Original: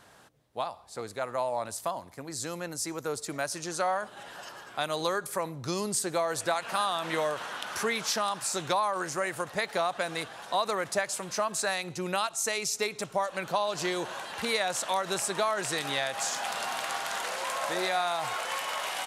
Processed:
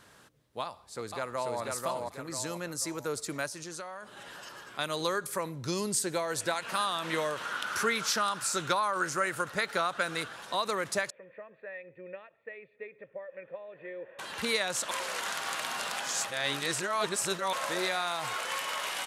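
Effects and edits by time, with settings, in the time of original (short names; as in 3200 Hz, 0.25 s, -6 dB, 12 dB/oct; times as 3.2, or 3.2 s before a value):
0.63–1.59 echo throw 0.49 s, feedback 40%, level -2 dB
3.46–4.79 compressor 2.5:1, threshold -40 dBFS
5.51–6.65 notch 1200 Hz
7.45–10.36 bell 1400 Hz +9.5 dB 0.25 oct
11.1–14.19 vocal tract filter e
14.91–17.53 reverse
whole clip: bell 740 Hz -7.5 dB 0.53 oct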